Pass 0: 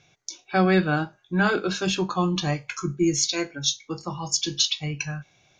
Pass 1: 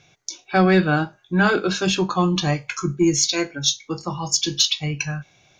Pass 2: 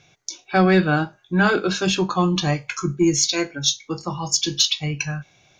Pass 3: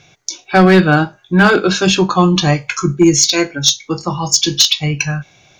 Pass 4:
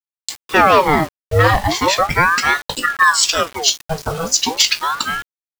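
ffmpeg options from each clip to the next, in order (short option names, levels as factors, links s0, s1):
-af "acontrast=48,volume=0.841"
-af anull
-af "asoftclip=type=hard:threshold=0.299,volume=2.51"
-af "acrusher=bits=4:mix=0:aa=0.000001,aeval=exprs='val(0)*sin(2*PI*950*n/s+950*0.7/0.37*sin(2*PI*0.37*n/s))':c=same"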